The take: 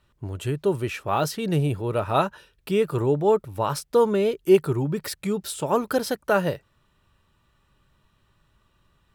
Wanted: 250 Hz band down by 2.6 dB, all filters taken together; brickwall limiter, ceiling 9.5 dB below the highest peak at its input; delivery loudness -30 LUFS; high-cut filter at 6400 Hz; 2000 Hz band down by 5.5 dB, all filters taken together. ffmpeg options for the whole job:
-af "lowpass=6.4k,equalizer=f=250:t=o:g=-4,equalizer=f=2k:t=o:g=-8.5,volume=-1dB,alimiter=limit=-19dB:level=0:latency=1"

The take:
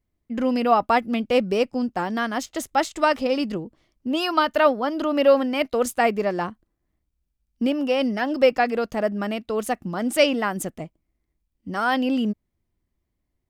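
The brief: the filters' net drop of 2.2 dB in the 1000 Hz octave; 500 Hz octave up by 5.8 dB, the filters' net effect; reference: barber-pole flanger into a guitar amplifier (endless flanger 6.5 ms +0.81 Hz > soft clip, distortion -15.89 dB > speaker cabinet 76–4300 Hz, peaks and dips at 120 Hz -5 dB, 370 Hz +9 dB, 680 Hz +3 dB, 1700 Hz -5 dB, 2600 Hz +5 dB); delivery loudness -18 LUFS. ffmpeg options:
-filter_complex "[0:a]equalizer=f=500:t=o:g=6.5,equalizer=f=1k:t=o:g=-9,asplit=2[a][b];[b]adelay=6.5,afreqshift=0.81[c];[a][c]amix=inputs=2:normalize=1,asoftclip=threshold=-14dB,highpass=76,equalizer=f=120:t=q:w=4:g=-5,equalizer=f=370:t=q:w=4:g=9,equalizer=f=680:t=q:w=4:g=3,equalizer=f=1.7k:t=q:w=4:g=-5,equalizer=f=2.6k:t=q:w=4:g=5,lowpass=f=4.3k:w=0.5412,lowpass=f=4.3k:w=1.3066,volume=6dB"

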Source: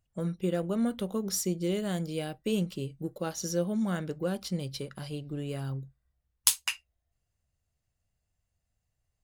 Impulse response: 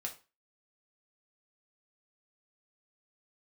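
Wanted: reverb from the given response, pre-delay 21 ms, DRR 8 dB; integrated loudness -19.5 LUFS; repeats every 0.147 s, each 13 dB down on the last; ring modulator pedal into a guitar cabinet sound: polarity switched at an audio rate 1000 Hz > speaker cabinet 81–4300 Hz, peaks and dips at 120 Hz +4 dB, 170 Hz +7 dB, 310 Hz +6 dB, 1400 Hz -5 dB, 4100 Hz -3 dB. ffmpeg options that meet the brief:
-filter_complex "[0:a]aecho=1:1:147|294|441:0.224|0.0493|0.0108,asplit=2[a][b];[1:a]atrim=start_sample=2205,adelay=21[c];[b][c]afir=irnorm=-1:irlink=0,volume=-7dB[d];[a][d]amix=inputs=2:normalize=0,aeval=exprs='val(0)*sgn(sin(2*PI*1000*n/s))':c=same,highpass=81,equalizer=f=120:t=q:w=4:g=4,equalizer=f=170:t=q:w=4:g=7,equalizer=f=310:t=q:w=4:g=6,equalizer=f=1.4k:t=q:w=4:g=-5,equalizer=f=4.1k:t=q:w=4:g=-3,lowpass=f=4.3k:w=0.5412,lowpass=f=4.3k:w=1.3066,volume=13dB"

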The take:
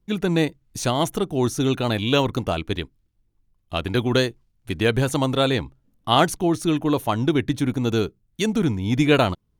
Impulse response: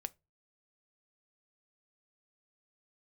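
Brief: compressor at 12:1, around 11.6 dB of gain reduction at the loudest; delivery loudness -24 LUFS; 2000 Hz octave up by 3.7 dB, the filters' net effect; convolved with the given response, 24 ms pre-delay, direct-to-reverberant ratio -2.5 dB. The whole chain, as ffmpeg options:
-filter_complex "[0:a]equalizer=f=2k:t=o:g=5,acompressor=threshold=-24dB:ratio=12,asplit=2[a][b];[1:a]atrim=start_sample=2205,adelay=24[c];[b][c]afir=irnorm=-1:irlink=0,volume=5dB[d];[a][d]amix=inputs=2:normalize=0,volume=1dB"

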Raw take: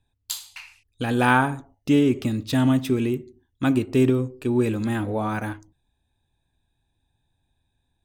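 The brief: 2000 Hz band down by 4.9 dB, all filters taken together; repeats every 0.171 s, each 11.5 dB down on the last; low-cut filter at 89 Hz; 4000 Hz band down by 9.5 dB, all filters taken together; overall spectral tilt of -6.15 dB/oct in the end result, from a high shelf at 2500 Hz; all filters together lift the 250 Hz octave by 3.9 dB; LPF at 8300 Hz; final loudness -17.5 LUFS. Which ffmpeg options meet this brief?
-af "highpass=89,lowpass=8.3k,equalizer=f=250:t=o:g=4.5,equalizer=f=2k:t=o:g=-4.5,highshelf=f=2.5k:g=-3,equalizer=f=4k:t=o:g=-8,aecho=1:1:171|342|513:0.266|0.0718|0.0194,volume=2.5dB"

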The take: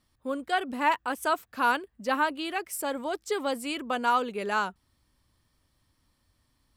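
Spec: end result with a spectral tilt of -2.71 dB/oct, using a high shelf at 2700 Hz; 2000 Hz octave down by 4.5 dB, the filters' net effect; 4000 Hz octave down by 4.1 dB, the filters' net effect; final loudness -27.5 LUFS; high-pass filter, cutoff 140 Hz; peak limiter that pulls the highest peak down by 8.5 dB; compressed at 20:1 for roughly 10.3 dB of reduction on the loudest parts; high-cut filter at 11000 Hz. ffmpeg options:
-af "highpass=140,lowpass=11k,equalizer=f=2k:t=o:g=-7.5,highshelf=f=2.7k:g=4,equalizer=f=4k:t=o:g=-5.5,acompressor=threshold=-31dB:ratio=20,volume=11dB,alimiter=limit=-17.5dB:level=0:latency=1"

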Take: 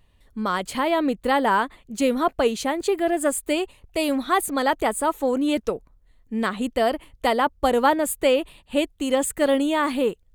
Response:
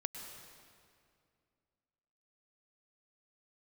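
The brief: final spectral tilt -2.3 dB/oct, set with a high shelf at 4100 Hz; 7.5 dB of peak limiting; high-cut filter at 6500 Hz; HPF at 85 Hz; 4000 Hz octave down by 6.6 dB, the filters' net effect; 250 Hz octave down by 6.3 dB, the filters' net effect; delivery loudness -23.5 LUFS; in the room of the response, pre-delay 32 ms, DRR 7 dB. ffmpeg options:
-filter_complex "[0:a]highpass=85,lowpass=6.5k,equalizer=f=250:t=o:g=-7.5,equalizer=f=4k:t=o:g=-5.5,highshelf=f=4.1k:g=-6.5,alimiter=limit=-15dB:level=0:latency=1,asplit=2[a][b];[1:a]atrim=start_sample=2205,adelay=32[c];[b][c]afir=irnorm=-1:irlink=0,volume=-6.5dB[d];[a][d]amix=inputs=2:normalize=0,volume=2.5dB"

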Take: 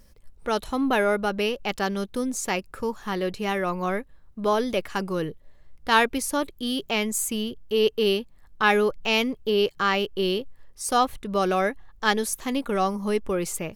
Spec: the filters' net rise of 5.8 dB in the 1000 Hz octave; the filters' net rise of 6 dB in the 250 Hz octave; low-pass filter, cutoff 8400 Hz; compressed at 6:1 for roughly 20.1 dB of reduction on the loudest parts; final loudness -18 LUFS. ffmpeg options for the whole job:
-af "lowpass=8.4k,equalizer=f=250:t=o:g=7,equalizer=f=1k:t=o:g=7,acompressor=threshold=-33dB:ratio=6,volume=18dB"

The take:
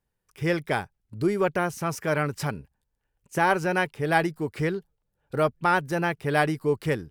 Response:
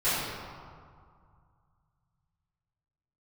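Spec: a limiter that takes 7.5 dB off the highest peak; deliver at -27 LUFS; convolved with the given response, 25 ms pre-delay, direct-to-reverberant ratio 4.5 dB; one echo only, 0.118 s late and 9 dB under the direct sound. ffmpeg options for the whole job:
-filter_complex "[0:a]alimiter=limit=-14.5dB:level=0:latency=1,aecho=1:1:118:0.355,asplit=2[a][b];[1:a]atrim=start_sample=2205,adelay=25[c];[b][c]afir=irnorm=-1:irlink=0,volume=-18dB[d];[a][d]amix=inputs=2:normalize=0,volume=-1dB"

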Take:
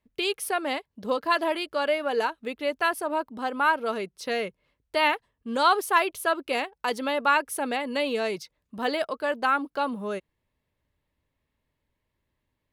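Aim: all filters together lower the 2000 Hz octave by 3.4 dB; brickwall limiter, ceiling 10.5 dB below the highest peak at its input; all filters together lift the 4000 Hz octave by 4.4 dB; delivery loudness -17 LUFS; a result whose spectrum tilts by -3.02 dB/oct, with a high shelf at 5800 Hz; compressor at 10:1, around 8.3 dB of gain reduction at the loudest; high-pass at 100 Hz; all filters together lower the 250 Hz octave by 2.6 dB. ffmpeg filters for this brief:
-af "highpass=100,equalizer=f=250:t=o:g=-3,equalizer=f=2k:t=o:g=-7,equalizer=f=4k:t=o:g=6,highshelf=f=5.8k:g=6.5,acompressor=threshold=-24dB:ratio=10,volume=18dB,alimiter=limit=-7dB:level=0:latency=1"

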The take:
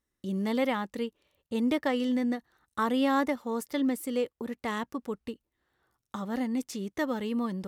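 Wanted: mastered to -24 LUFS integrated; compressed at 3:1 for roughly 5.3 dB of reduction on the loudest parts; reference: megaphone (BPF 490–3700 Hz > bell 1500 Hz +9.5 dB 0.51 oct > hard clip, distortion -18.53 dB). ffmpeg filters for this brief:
-af "acompressor=threshold=-30dB:ratio=3,highpass=490,lowpass=3.7k,equalizer=f=1.5k:t=o:w=0.51:g=9.5,asoftclip=type=hard:threshold=-23.5dB,volume=14dB"

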